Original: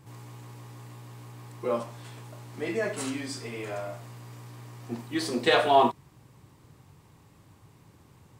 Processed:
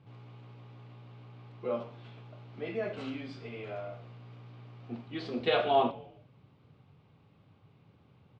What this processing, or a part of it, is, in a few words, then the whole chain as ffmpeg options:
frequency-shifting delay pedal into a guitar cabinet: -filter_complex "[0:a]asplit=4[link_01][link_02][link_03][link_04];[link_02]adelay=117,afreqshift=-120,volume=-19.5dB[link_05];[link_03]adelay=234,afreqshift=-240,volume=-26.6dB[link_06];[link_04]adelay=351,afreqshift=-360,volume=-33.8dB[link_07];[link_01][link_05][link_06][link_07]amix=inputs=4:normalize=0,highpass=93,equalizer=frequency=330:width_type=q:width=4:gain=-6,equalizer=frequency=980:width_type=q:width=4:gain=-8,equalizer=frequency=1800:width_type=q:width=4:gain=-9,lowpass=frequency=3500:width=0.5412,lowpass=frequency=3500:width=1.3066,volume=-3.5dB"

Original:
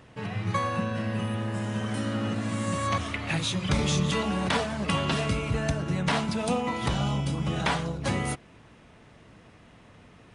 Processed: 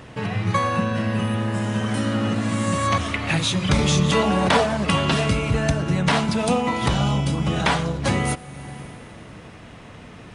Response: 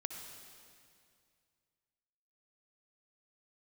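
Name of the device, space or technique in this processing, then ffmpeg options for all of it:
ducked reverb: -filter_complex "[0:a]asettb=1/sr,asplit=3[link_01][link_02][link_03];[link_01]atrim=end=4.104[link_04];[link_02]atrim=start=4.1:end=4.77,asetpts=PTS-STARTPTS,afade=type=in:duration=0.004:curve=qsin,afade=type=out:start_time=0.666:duration=0.004:curve=qsin,equalizer=frequency=640:width=0.8:gain=5[link_05];[link_03]atrim=start=4.766[link_06];[link_04][link_05]acrossfade=duration=0.004:curve1=hsin:curve2=qsin[link_07];[link_07][link_06]acrossfade=duration=0.004:curve1=qsin:curve2=hsin,asplit=3[link_08][link_09][link_10];[1:a]atrim=start_sample=2205[link_11];[link_09][link_11]afir=irnorm=-1:irlink=0[link_12];[link_10]apad=whole_len=456336[link_13];[link_12][link_13]sidechaincompress=threshold=-39dB:ratio=10:attack=8.3:release=460,volume=1dB[link_14];[link_08][link_14]amix=inputs=2:normalize=0,volume=5.5dB"

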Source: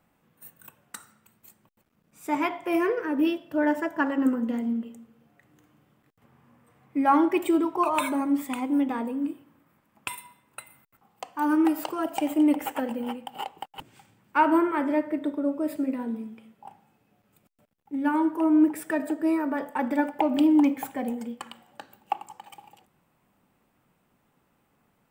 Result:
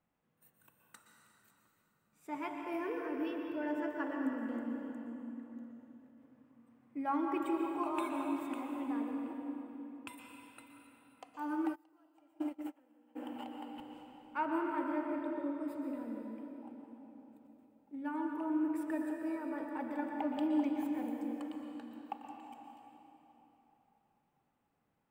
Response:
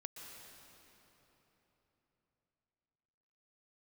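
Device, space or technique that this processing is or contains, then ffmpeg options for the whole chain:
swimming-pool hall: -filter_complex "[1:a]atrim=start_sample=2205[link_01];[0:a][link_01]afir=irnorm=-1:irlink=0,highshelf=frequency=5100:gain=-6,asplit=3[link_02][link_03][link_04];[link_02]afade=type=out:start_time=11.74:duration=0.02[link_05];[link_03]agate=range=-27dB:threshold=-24dB:ratio=16:detection=peak,afade=type=in:start_time=11.74:duration=0.02,afade=type=out:start_time=13.15:duration=0.02[link_06];[link_04]afade=type=in:start_time=13.15:duration=0.02[link_07];[link_05][link_06][link_07]amix=inputs=3:normalize=0,volume=-8.5dB"

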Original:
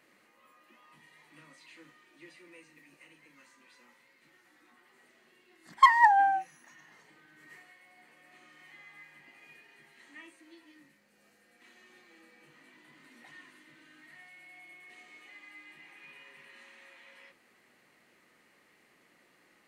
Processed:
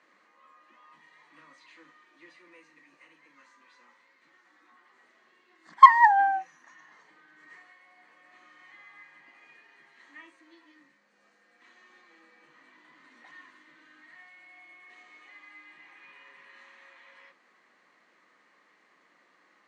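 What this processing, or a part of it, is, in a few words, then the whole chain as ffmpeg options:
television speaker: -af "highpass=frequency=190:width=0.5412,highpass=frequency=190:width=1.3066,equalizer=frequency=230:width_type=q:width=4:gain=-5,equalizer=frequency=380:width_type=q:width=4:gain=-4,equalizer=frequency=1100:width_type=q:width=4:gain=8,equalizer=frequency=1700:width_type=q:width=4:gain=3,equalizer=frequency=2700:width_type=q:width=4:gain=-4,equalizer=frequency=5000:width_type=q:width=4:gain=-3,lowpass=frequency=6600:width=0.5412,lowpass=frequency=6600:width=1.3066"

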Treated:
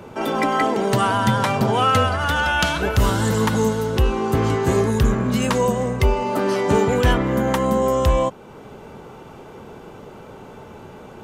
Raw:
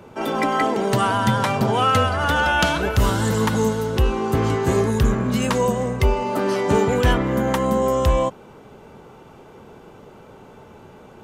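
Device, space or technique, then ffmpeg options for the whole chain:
parallel compression: -filter_complex "[0:a]asettb=1/sr,asplit=3[link_01][link_02][link_03];[link_01]atrim=end=2.164[link_04];[link_02]atrim=start=2.16:end=2.82,asetpts=PTS-STARTPTS,afade=type=in:duration=0.004:curve=qsin,afade=type=out:start_time=0.656:duration=0.004:curve=qsin,equalizer=frequency=420:width=0.56:gain=-5[link_05];[link_03]atrim=start=2.816[link_06];[link_04][link_05]acrossfade=duration=0.004:curve1=hsin:curve2=qsin[link_07];[link_07][link_06]acrossfade=duration=0.004:curve1=qsin:curve2=hsin,asplit=2[link_08][link_09];[link_09]acompressor=threshold=-37dB:ratio=6,volume=-3dB[link_10];[link_08][link_10]amix=inputs=2:normalize=0"

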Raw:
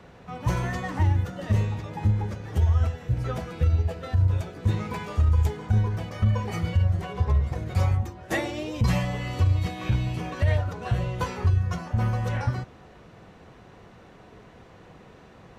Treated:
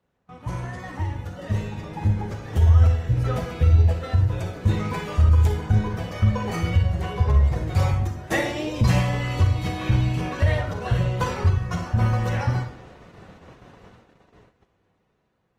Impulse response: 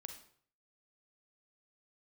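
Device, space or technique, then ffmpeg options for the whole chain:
speakerphone in a meeting room: -filter_complex "[1:a]atrim=start_sample=2205[link_01];[0:a][link_01]afir=irnorm=-1:irlink=0,dynaudnorm=framelen=510:gausssize=7:maxgain=9dB,agate=range=-18dB:threshold=-45dB:ratio=16:detection=peak" -ar 48000 -c:a libopus -b:a 24k

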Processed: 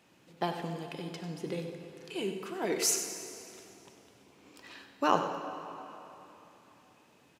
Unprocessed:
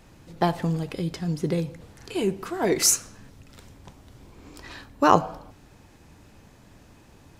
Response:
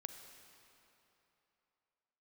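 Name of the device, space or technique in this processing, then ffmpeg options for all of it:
PA in a hall: -filter_complex "[0:a]highpass=200,equalizer=frequency=2800:width_type=o:width=0.58:gain=6,aecho=1:1:96:0.282[link_01];[1:a]atrim=start_sample=2205[link_02];[link_01][link_02]afir=irnorm=-1:irlink=0,volume=-5dB"

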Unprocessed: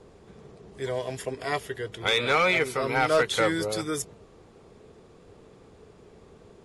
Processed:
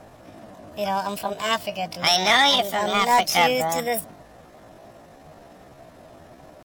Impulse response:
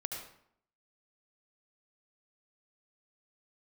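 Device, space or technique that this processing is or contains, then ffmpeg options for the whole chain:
chipmunk voice: -filter_complex "[0:a]asetrate=68011,aresample=44100,atempo=0.64842,asettb=1/sr,asplit=3[link_01][link_02][link_03];[link_01]atrim=end=2.564[link_04];[link_02]atrim=start=2.56:end=3.25,asetpts=PTS-STARTPTS,afade=type=in:duration=0.004:curve=qsin,afade=type=out:start_time=0.686:duration=0.004:curve=qsin,equalizer=frequency=2100:width=0.99:gain=-5[link_05];[link_03]atrim=start=3.246[link_06];[link_04][link_05]acrossfade=duration=0.004:curve1=hsin:curve2=qsin[link_07];[link_07][link_06]acrossfade=duration=0.004:curve1=qsin:curve2=hsin,volume=5.5dB"

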